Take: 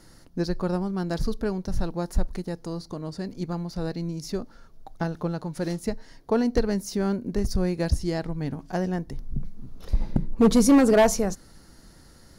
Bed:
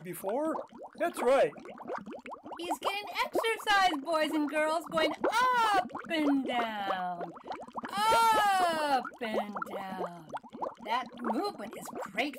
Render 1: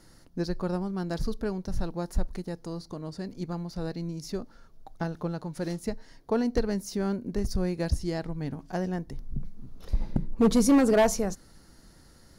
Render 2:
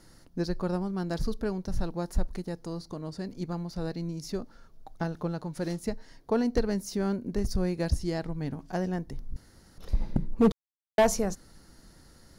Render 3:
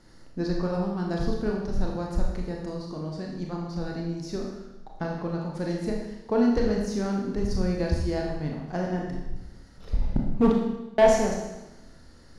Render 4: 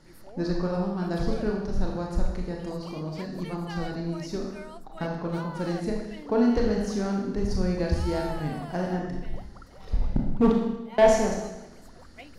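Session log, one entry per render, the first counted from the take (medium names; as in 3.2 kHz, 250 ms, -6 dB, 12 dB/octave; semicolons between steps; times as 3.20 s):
trim -3.5 dB
9.36–9.78 s: room tone; 10.52–10.98 s: mute
distance through air 66 m; Schroeder reverb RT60 1 s, combs from 26 ms, DRR -1 dB
add bed -15 dB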